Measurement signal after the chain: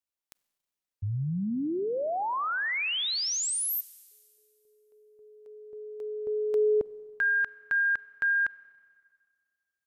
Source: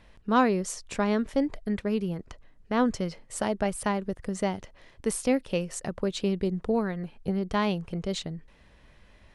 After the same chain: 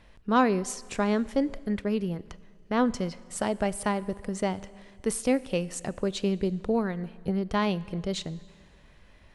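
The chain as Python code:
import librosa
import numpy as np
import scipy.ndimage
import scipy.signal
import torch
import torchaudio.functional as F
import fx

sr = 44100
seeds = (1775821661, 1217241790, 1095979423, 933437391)

y = fx.rev_schroeder(x, sr, rt60_s=1.9, comb_ms=31, drr_db=19.0)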